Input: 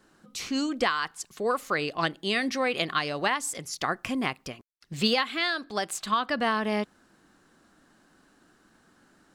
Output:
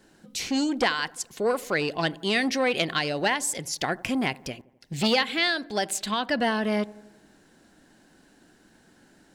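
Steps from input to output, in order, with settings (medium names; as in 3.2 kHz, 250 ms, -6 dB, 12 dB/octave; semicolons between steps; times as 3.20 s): peaking EQ 1.2 kHz -14 dB 0.32 oct; feedback echo behind a low-pass 86 ms, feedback 57%, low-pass 1.1 kHz, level -21.5 dB; transformer saturation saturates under 1.2 kHz; trim +4.5 dB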